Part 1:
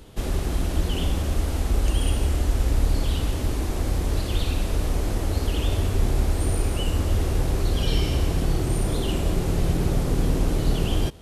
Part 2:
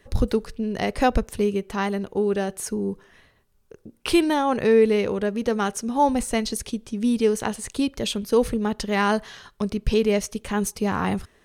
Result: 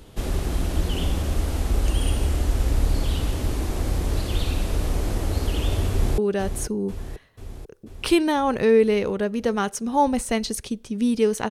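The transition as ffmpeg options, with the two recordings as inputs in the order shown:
-filter_complex "[0:a]apad=whole_dur=11.5,atrim=end=11.5,atrim=end=6.182[a];[1:a]atrim=start=2.198:end=7.52[b];[a][b]acrossfade=d=0.004:c1=hsin:c2=hsin,asplit=2[c][d];[d]afade=t=in:st=5.9:d=0.01,afade=t=out:st=6.18:d=0.01,aecho=0:1:490|980|1470|1960|2450|2940|3430|3920|4410:0.375837|0.244294|0.158791|0.103214|0.0670893|0.0436081|0.0283452|0.0184244|0.0119759[e];[c][e]amix=inputs=2:normalize=0"

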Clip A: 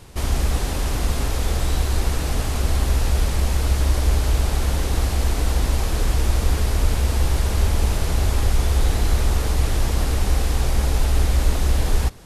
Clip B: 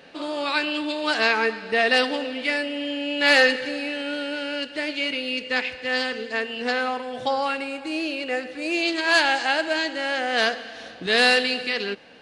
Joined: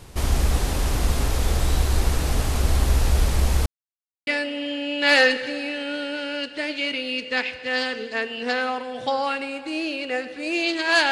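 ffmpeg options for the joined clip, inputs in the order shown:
-filter_complex "[0:a]apad=whole_dur=11.11,atrim=end=11.11,asplit=2[a][b];[a]atrim=end=3.66,asetpts=PTS-STARTPTS,afade=t=out:st=3.656:d=0.004:c=hsin[c];[b]atrim=start=3.66:end=4.27,asetpts=PTS-STARTPTS,volume=0[d];[1:a]atrim=start=2.46:end=9.3,asetpts=PTS-STARTPTS,afade=t=in:d=0.004:c=hsin[e];[c][d][e]concat=n=3:v=0:a=1"

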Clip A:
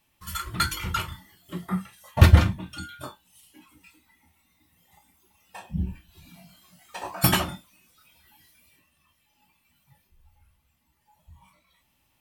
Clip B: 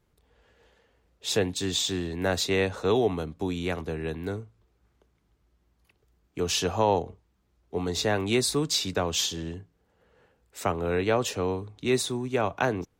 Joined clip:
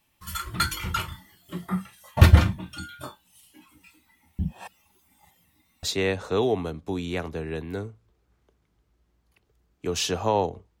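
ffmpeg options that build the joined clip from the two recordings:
-filter_complex "[0:a]apad=whole_dur=10.8,atrim=end=10.8,asplit=2[a][b];[a]atrim=end=4.392[c];[b]atrim=start=4.388:end=5.832,asetpts=PTS-STARTPTS,areverse[d];[1:a]atrim=start=2.358:end=7.33[e];[c][d]acrossfade=d=0.004:c1=hsin:c2=hsin[f];[f][e]acrossfade=d=0.004:c1=hsin:c2=hsin"

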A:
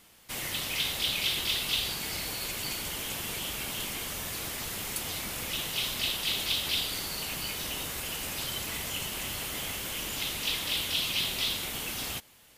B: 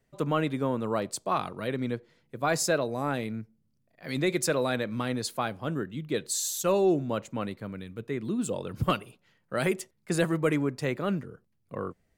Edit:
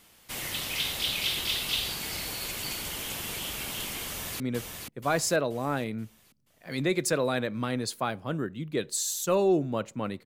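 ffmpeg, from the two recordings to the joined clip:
-filter_complex "[0:a]apad=whole_dur=10.25,atrim=end=10.25,atrim=end=4.402[a];[1:a]atrim=start=1.768:end=7.62[b];[a][b]acrossfade=d=0.004:c1=hsin:c2=hsin,asplit=2[c][d];[d]afade=t=in:st=4.06:d=0.01,afade=t=out:st=4.4:d=0.01,aecho=0:1:480|960|1440|1920|2400|2880:0.595662|0.268048|0.120622|0.0542797|0.0244259|0.0109916[e];[c][e]amix=inputs=2:normalize=0"

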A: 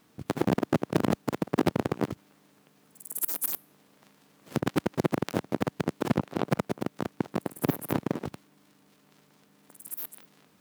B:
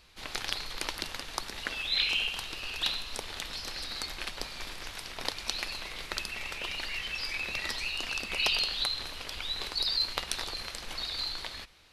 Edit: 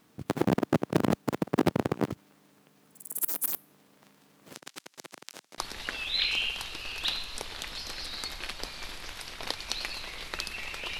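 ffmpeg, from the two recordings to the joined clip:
-filter_complex "[0:a]asplit=3[a][b][c];[a]afade=t=out:st=4.53:d=0.02[d];[b]bandpass=f=6.7k:t=q:w=0.86:csg=0,afade=t=in:st=4.53:d=0.02,afade=t=out:st=5.58:d=0.02[e];[c]afade=t=in:st=5.58:d=0.02[f];[d][e][f]amix=inputs=3:normalize=0,apad=whole_dur=10.99,atrim=end=10.99,atrim=end=5.582[g];[1:a]atrim=start=1.358:end=6.77[h];[g][h]acrossfade=d=0.004:c1=hsin:c2=hsin"

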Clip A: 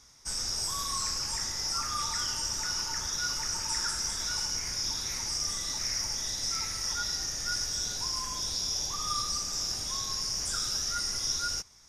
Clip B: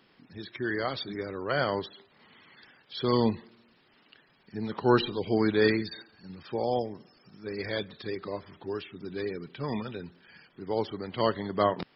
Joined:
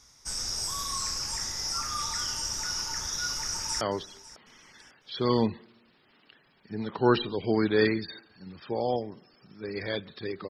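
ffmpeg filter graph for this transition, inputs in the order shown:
-filter_complex "[0:a]apad=whole_dur=10.49,atrim=end=10.49,atrim=end=3.812[a];[1:a]atrim=start=1.638:end=8.32[b];[a][b]acrossfade=d=0.004:c1=hsin:c2=hsin,asplit=2[c][d];[d]afade=t=in:st=3.36:d=0.01,afade=t=out:st=3.81:d=0.01,aecho=0:1:550|1100|1650:0.125893|0.0440624|0.0154218[e];[c][e]amix=inputs=2:normalize=0"

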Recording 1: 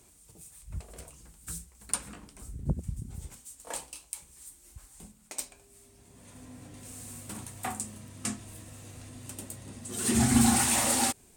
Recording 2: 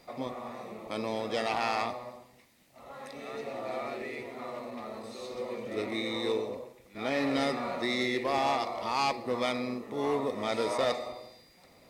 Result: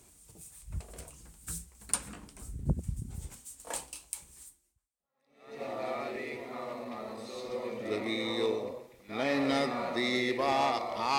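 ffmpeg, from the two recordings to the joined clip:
-filter_complex "[0:a]apad=whole_dur=11.18,atrim=end=11.18,atrim=end=5.62,asetpts=PTS-STARTPTS[a];[1:a]atrim=start=2.28:end=9.04,asetpts=PTS-STARTPTS[b];[a][b]acrossfade=d=1.2:c1=exp:c2=exp"

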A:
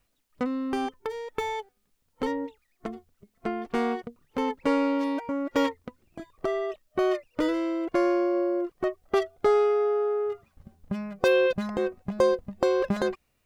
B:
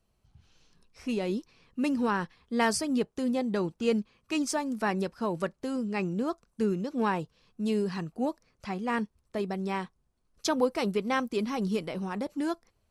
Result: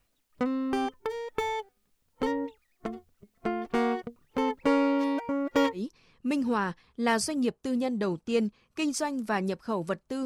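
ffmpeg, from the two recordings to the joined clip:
-filter_complex "[0:a]apad=whole_dur=10.25,atrim=end=10.25,atrim=end=5.84,asetpts=PTS-STARTPTS[a];[1:a]atrim=start=1.25:end=5.78,asetpts=PTS-STARTPTS[b];[a][b]acrossfade=d=0.12:c1=tri:c2=tri"

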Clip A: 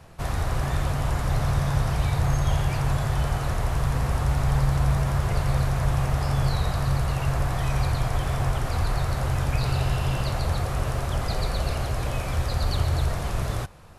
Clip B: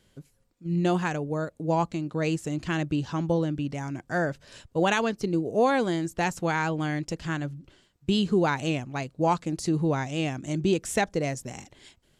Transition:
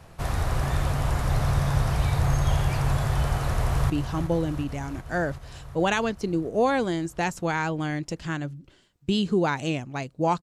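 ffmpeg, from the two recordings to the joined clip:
-filter_complex "[0:a]apad=whole_dur=10.42,atrim=end=10.42,atrim=end=3.902[a];[1:a]atrim=start=2.898:end=9.42[b];[a][b]acrossfade=d=0.004:c1=hsin:c2=hsin,asplit=2[c][d];[d]afade=t=in:st=3.2:d=0.01,afade=t=out:st=3.9:d=0.01,aecho=0:1:370|740|1110|1480|1850|2220|2590|2960|3330|3700|4070|4440:0.298538|0.223904|0.167928|0.125946|0.0944594|0.0708445|0.0531334|0.03985|0.0298875|0.0224157|0.0168117|0.0126088[e];[c][e]amix=inputs=2:normalize=0"

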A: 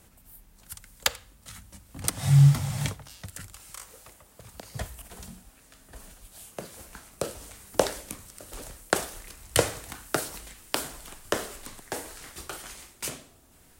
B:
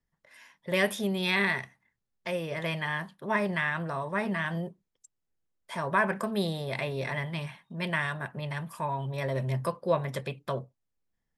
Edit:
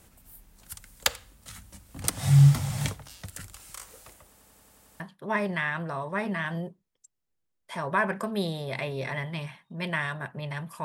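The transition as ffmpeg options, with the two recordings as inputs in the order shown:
-filter_complex "[0:a]apad=whole_dur=10.84,atrim=end=10.84,asplit=8[a][b][c][d][e][f][g][h];[a]atrim=end=4.372[i];[b]atrim=start=4.278:end=4.372[j];[c]atrim=start=4.278:end=4.372[k];[d]atrim=start=4.278:end=4.372[l];[e]atrim=start=4.278:end=4.372[m];[f]atrim=start=4.278:end=4.372[n];[g]atrim=start=4.278:end=4.372[o];[h]atrim=start=4.278:end=4.372[p];[1:a]atrim=start=2.998:end=8.84[q];[i][j]acrossfade=d=0.004:c1=hsin:c2=hsin[r];[r][k]acrossfade=d=0.004:c1=hsin:c2=hsin[s];[s][l]acrossfade=d=0.004:c1=hsin:c2=hsin[t];[t][m]acrossfade=d=0.004:c1=hsin:c2=hsin[u];[u][n]acrossfade=d=0.004:c1=hsin:c2=hsin[v];[v][o]acrossfade=d=0.004:c1=hsin:c2=hsin[w];[w][p]acrossfade=d=0.004:c1=hsin:c2=hsin[x];[x][q]acrossfade=d=0.004:c1=hsin:c2=hsin"

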